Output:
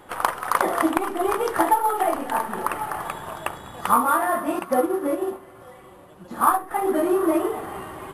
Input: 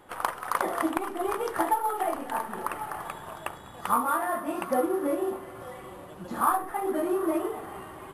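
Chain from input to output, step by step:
0:04.59–0:06.71: expander for the loud parts 1.5 to 1, over −40 dBFS
level +6.5 dB

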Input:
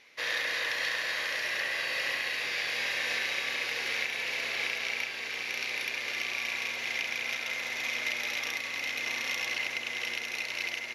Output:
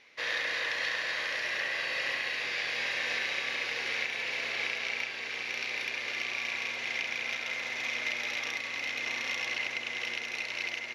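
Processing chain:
high-frequency loss of the air 58 metres

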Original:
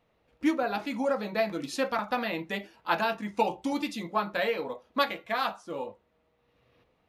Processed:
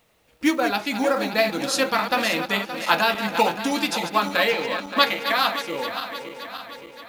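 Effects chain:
feedback delay that plays each chunk backwards 286 ms, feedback 72%, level −9 dB
0:04.49–0:05.03: low-pass filter 7,100 Hz
log-companded quantiser 8 bits
high-shelf EQ 2,000 Hz +10.5 dB
level +4.5 dB

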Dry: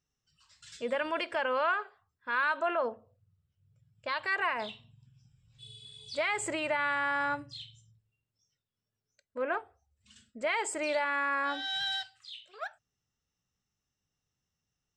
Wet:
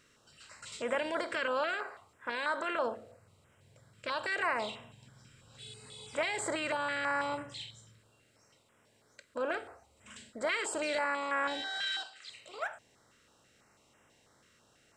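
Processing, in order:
compressor on every frequency bin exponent 0.6
0:11.62–0:12.30: band-pass filter 290–7,100 Hz
notch on a step sequencer 6.1 Hz 800–4,300 Hz
level −3 dB

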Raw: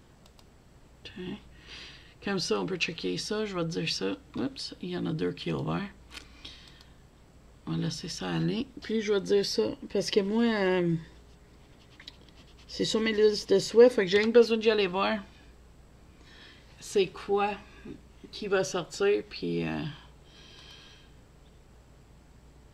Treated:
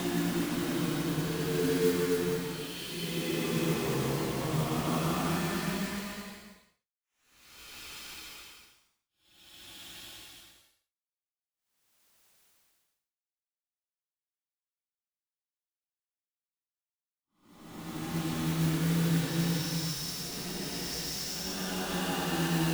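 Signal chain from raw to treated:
bit-depth reduction 6 bits, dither none
extreme stretch with random phases 6.7×, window 0.25 s, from 0:04.97
noise that follows the level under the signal 17 dB

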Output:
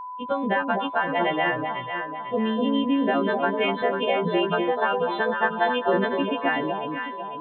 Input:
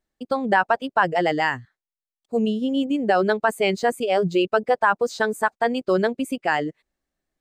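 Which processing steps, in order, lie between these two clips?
every partial snapped to a pitch grid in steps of 2 semitones
downward compressor, threshold −22 dBFS, peak gain reduction 9.5 dB
downsampling to 8,000 Hz
delay that swaps between a low-pass and a high-pass 249 ms, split 970 Hz, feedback 65%, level −3 dB
steady tone 1,000 Hz −34 dBFS
0:05.29–0:06.05: comb filter 5.7 ms, depth 47%
level +1 dB

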